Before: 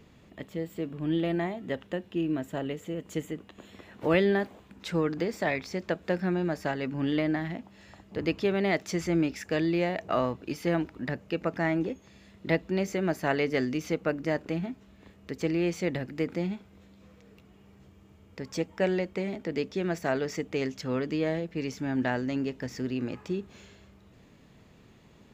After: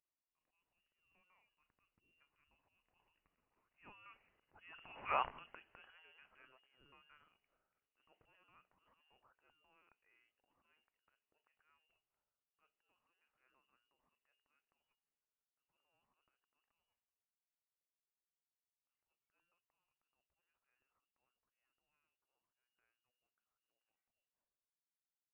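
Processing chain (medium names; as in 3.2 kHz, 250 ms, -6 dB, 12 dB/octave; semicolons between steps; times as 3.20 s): Doppler pass-by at 5.15 s, 23 m/s, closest 1.3 m; transient shaper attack -8 dB, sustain +10 dB; differentiator; frequency inversion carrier 3.1 kHz; trim +10.5 dB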